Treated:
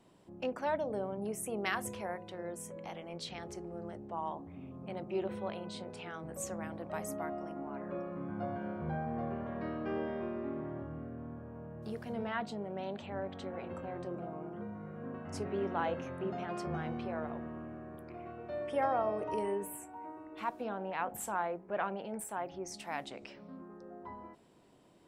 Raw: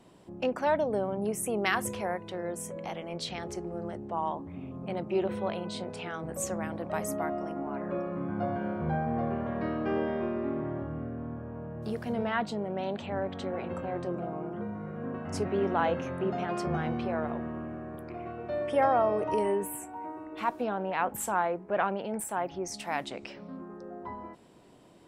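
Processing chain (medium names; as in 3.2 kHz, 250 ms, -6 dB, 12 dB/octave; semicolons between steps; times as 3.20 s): de-hum 60.28 Hz, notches 13; trim -6.5 dB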